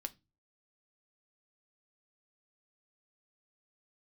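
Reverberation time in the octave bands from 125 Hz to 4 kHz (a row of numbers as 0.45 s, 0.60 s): 0.50 s, 0.40 s, 0.25 s, 0.20 s, 0.20 s, 0.25 s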